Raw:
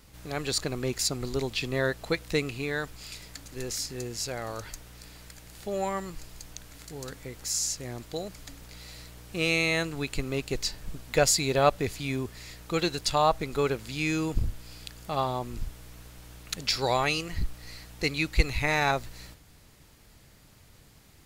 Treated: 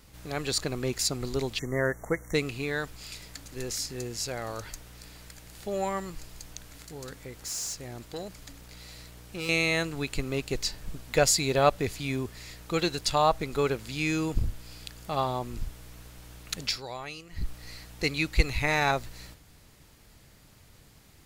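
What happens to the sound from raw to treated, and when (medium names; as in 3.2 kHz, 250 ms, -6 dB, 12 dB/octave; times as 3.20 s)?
1.59–2.34 s: spectral selection erased 2.2–5.6 kHz
6.82–9.49 s: valve stage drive 30 dB, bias 0.35
16.64–17.49 s: dip -13 dB, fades 0.19 s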